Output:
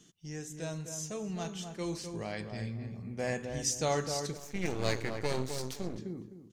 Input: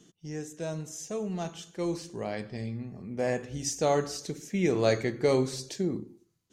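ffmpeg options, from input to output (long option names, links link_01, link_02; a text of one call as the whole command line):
ffmpeg -i in.wav -filter_complex "[0:a]equalizer=frequency=420:width_type=o:width=2.9:gain=-7.5,asplit=2[link_01][link_02];[link_02]adelay=256,lowpass=frequency=1400:poles=1,volume=-6dB,asplit=2[link_03][link_04];[link_04]adelay=256,lowpass=frequency=1400:poles=1,volume=0.28,asplit=2[link_05][link_06];[link_06]adelay=256,lowpass=frequency=1400:poles=1,volume=0.28,asplit=2[link_07][link_08];[link_08]adelay=256,lowpass=frequency=1400:poles=1,volume=0.28[link_09];[link_01][link_03][link_05][link_07][link_09]amix=inputs=5:normalize=0,asettb=1/sr,asplit=3[link_10][link_11][link_12];[link_10]atrim=end=4.374[link_13];[link_11]atrim=start=4.37:end=5.98,asetpts=PTS-STARTPTS,afade=type=in:duration=0.004:curve=qsin,afade=type=out:start_time=1.606:duration=0.004:curve=qsin,aeval=exprs='max(val(0),0)':channel_layout=same[link_14];[link_12]atrim=start=5.976[link_15];[link_13][link_14]acrossfade=duration=0.004:curve1=hsin:curve2=qsin[link_16];[link_16][link_15]acrossfade=duration=0.004:curve1=qsin:curve2=hsin,volume=1dB" out.wav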